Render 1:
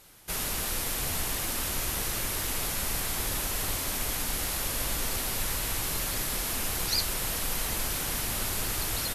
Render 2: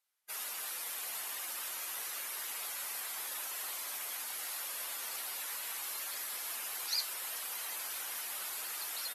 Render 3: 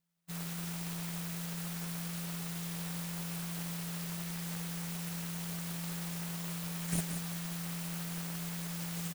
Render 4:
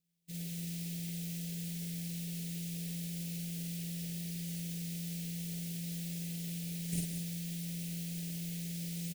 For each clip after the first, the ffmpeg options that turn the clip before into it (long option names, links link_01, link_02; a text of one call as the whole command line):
ffmpeg -i in.wav -af "afftdn=noise_reduction=23:noise_floor=-39,highpass=880,volume=-5.5dB" out.wav
ffmpeg -i in.wav -filter_complex "[0:a]aeval=exprs='abs(val(0))':channel_layout=same,aeval=exprs='val(0)*sin(2*PI*170*n/s)':channel_layout=same,asplit=2[link_01][link_02];[link_02]aecho=0:1:178:0.398[link_03];[link_01][link_03]amix=inputs=2:normalize=0,volume=4dB" out.wav
ffmpeg -i in.wav -filter_complex "[0:a]asplit=2[link_01][link_02];[link_02]aeval=exprs='(mod(53.1*val(0)+1,2)-1)/53.1':channel_layout=same,volume=-8dB[link_03];[link_01][link_03]amix=inputs=2:normalize=0,asuperstop=centerf=1100:order=4:qfactor=0.59,asplit=2[link_04][link_05];[link_05]adelay=46,volume=-3dB[link_06];[link_04][link_06]amix=inputs=2:normalize=0,volume=-4.5dB" out.wav